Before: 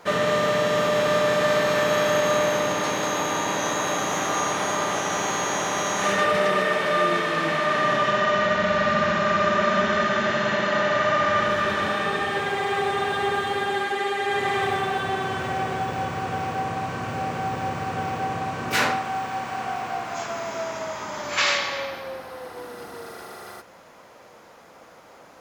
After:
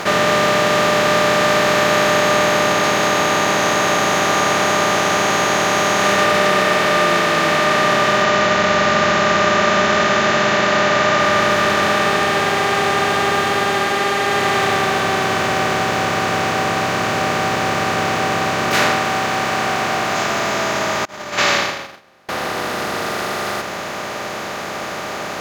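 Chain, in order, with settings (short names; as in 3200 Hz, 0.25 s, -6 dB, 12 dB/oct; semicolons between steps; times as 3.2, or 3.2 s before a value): per-bin compression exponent 0.4; 21.05–22.29 gate -18 dBFS, range -30 dB; gain +1.5 dB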